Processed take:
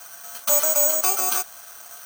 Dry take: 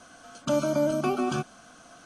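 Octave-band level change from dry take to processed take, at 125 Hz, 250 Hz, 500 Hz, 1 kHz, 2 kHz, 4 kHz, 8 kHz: under -20 dB, -16.0 dB, -1.5 dB, +2.5 dB, +4.5 dB, +8.0 dB, +22.5 dB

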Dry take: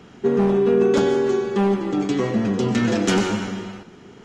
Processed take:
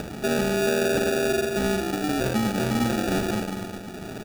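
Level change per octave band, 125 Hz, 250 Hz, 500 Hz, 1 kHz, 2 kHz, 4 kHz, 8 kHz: -3.5 dB, -5.0 dB, -5.5 dB, -2.0 dB, +1.5 dB, 0.0 dB, +1.5 dB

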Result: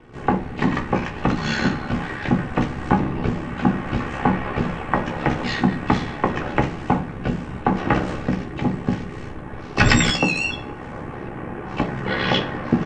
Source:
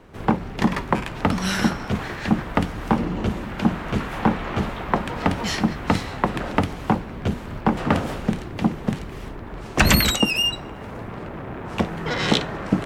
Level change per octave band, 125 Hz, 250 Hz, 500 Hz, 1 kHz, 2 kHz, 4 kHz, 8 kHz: +1.5 dB, +1.0 dB, +1.0 dB, +1.5 dB, +2.0 dB, -2.5 dB, -2.5 dB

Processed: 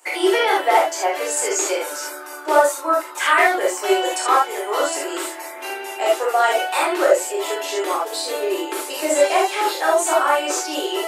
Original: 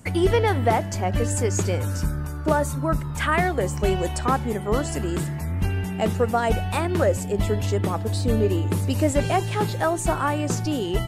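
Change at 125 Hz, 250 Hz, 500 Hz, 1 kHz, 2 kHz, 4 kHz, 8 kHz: under -40 dB, -3.5 dB, +5.0 dB, +7.5 dB, +8.0 dB, +9.0 dB, +8.5 dB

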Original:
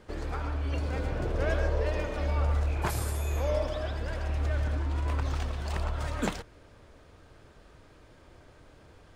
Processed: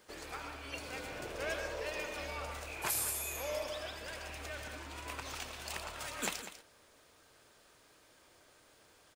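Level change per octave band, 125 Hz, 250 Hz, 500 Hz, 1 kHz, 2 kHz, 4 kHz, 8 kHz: -22.0 dB, -12.5 dB, -8.5 dB, -6.0 dB, -2.0 dB, +1.0 dB, +6.0 dB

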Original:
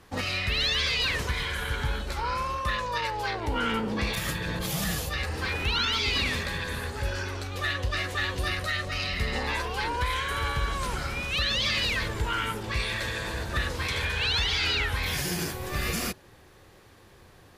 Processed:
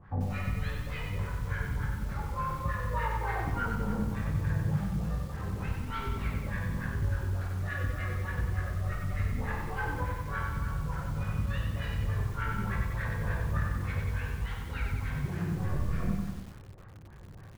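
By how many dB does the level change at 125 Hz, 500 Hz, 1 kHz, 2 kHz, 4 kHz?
+2.5 dB, -7.0 dB, -6.0 dB, -10.0 dB, -23.5 dB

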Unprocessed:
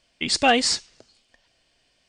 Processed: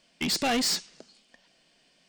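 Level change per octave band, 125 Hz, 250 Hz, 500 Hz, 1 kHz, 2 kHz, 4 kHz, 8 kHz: +0.5 dB, -3.0 dB, -8.5 dB, -9.5 dB, -8.5 dB, -5.0 dB, -4.0 dB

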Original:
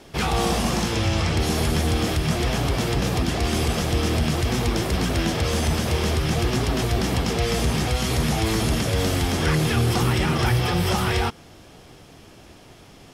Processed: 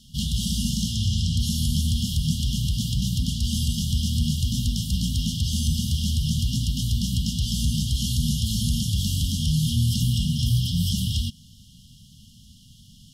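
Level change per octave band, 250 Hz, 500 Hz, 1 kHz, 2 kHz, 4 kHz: -3.0 dB, under -40 dB, under -40 dB, -22.0 dB, 0.0 dB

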